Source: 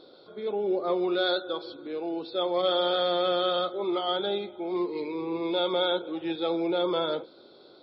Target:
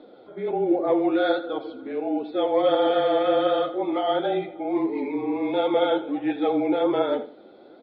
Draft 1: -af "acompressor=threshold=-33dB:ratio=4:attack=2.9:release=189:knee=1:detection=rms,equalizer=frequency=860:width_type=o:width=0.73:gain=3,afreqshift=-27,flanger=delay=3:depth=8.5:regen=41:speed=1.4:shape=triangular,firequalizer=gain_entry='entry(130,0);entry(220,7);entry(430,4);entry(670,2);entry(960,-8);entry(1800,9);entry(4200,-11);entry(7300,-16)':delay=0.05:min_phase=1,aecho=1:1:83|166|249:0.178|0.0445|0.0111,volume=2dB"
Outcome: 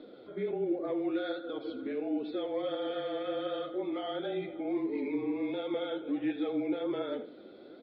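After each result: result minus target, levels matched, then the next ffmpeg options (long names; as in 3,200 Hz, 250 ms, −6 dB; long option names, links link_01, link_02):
downward compressor: peak gain reduction +12 dB; 1,000 Hz band −6.0 dB
-af "equalizer=frequency=860:width_type=o:width=0.73:gain=3,afreqshift=-27,flanger=delay=3:depth=8.5:regen=41:speed=1.4:shape=triangular,firequalizer=gain_entry='entry(130,0);entry(220,7);entry(430,4);entry(670,2);entry(960,-8);entry(1800,9);entry(4200,-11);entry(7300,-16)':delay=0.05:min_phase=1,aecho=1:1:83|166|249:0.178|0.0445|0.0111,volume=2dB"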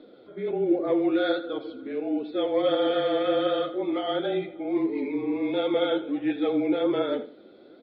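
1,000 Hz band −4.5 dB
-af "equalizer=frequency=860:width_type=o:width=0.73:gain=14,afreqshift=-27,flanger=delay=3:depth=8.5:regen=41:speed=1.4:shape=triangular,firequalizer=gain_entry='entry(130,0);entry(220,7);entry(430,4);entry(670,2);entry(960,-8);entry(1800,9);entry(4200,-11);entry(7300,-16)':delay=0.05:min_phase=1,aecho=1:1:83|166|249:0.178|0.0445|0.0111,volume=2dB"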